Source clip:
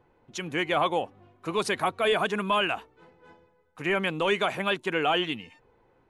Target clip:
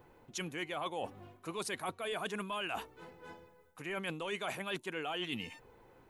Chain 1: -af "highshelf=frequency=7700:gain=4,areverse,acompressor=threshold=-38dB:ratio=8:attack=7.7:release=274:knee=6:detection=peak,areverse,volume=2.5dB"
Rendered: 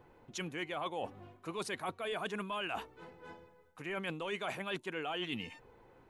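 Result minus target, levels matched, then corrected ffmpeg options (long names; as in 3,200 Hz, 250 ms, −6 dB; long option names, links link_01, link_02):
8,000 Hz band −3.5 dB
-af "highshelf=frequency=7700:gain=14.5,areverse,acompressor=threshold=-38dB:ratio=8:attack=7.7:release=274:knee=6:detection=peak,areverse,volume=2.5dB"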